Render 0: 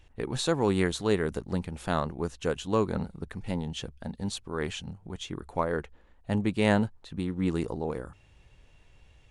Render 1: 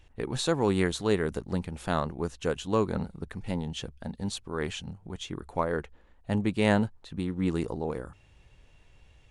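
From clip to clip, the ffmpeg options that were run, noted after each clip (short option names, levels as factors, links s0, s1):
-af anull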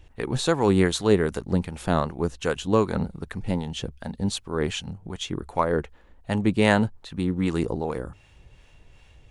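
-filter_complex "[0:a]acrossover=split=690[s0][s1];[s0]aeval=exprs='val(0)*(1-0.5/2+0.5/2*cos(2*PI*2.6*n/s))':c=same[s2];[s1]aeval=exprs='val(0)*(1-0.5/2-0.5/2*cos(2*PI*2.6*n/s))':c=same[s3];[s2][s3]amix=inputs=2:normalize=0,volume=2.37"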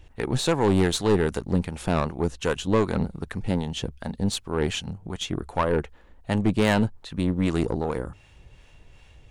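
-af "aeval=exprs='(tanh(7.08*val(0)+0.45)-tanh(0.45))/7.08':c=same,volume=1.41"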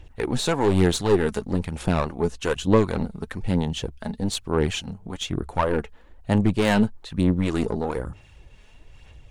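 -af "aphaser=in_gain=1:out_gain=1:delay=4.8:decay=0.41:speed=1.1:type=sinusoidal"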